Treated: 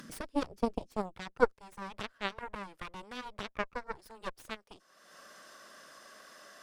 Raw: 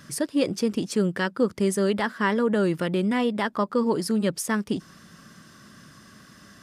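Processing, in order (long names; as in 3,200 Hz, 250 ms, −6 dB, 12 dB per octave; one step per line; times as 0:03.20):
high-pass filter sweep 220 Hz → 580 Hz, 0:00.55–0:01.75
harmonic generator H 2 −11 dB, 3 −9 dB, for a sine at −6.5 dBFS
upward compression, threshold −26 dBFS
level −6 dB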